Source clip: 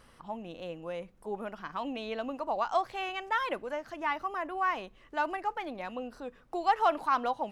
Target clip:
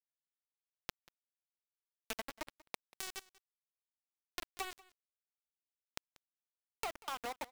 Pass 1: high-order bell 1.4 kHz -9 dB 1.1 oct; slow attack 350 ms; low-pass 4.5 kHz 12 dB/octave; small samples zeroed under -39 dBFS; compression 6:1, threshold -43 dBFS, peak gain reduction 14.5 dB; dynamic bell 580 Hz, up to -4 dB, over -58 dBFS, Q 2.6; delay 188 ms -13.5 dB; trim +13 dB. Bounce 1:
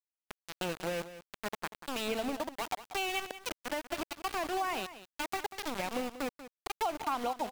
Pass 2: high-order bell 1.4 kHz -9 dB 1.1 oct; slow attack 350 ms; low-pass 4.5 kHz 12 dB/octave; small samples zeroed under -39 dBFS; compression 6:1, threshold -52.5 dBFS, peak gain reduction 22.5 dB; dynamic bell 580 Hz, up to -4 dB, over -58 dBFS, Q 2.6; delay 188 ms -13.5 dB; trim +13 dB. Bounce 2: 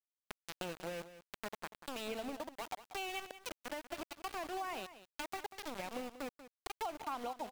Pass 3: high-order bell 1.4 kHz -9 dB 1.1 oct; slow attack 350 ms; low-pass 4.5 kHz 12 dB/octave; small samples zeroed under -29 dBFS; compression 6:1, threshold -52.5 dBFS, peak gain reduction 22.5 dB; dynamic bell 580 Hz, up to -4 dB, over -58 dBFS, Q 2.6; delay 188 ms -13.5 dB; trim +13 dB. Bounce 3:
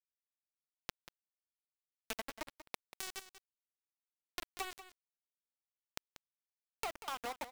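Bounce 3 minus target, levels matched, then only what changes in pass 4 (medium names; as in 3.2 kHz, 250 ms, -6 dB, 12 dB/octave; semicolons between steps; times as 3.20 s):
echo-to-direct +8.5 dB
change: delay 188 ms -22 dB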